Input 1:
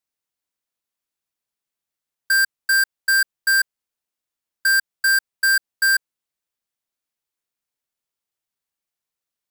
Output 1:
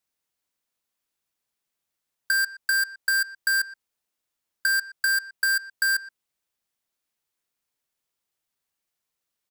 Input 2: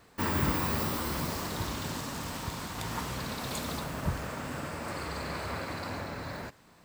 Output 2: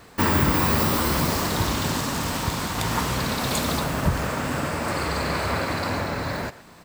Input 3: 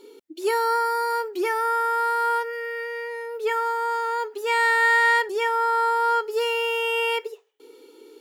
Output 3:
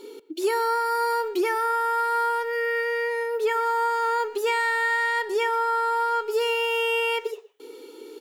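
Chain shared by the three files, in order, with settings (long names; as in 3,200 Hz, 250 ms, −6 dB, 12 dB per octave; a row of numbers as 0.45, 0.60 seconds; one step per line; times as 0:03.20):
downward compressor 8 to 1, threshold −26 dBFS
far-end echo of a speakerphone 120 ms, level −16 dB
loudness normalisation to −24 LKFS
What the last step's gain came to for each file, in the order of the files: +3.0, +11.0, +5.5 decibels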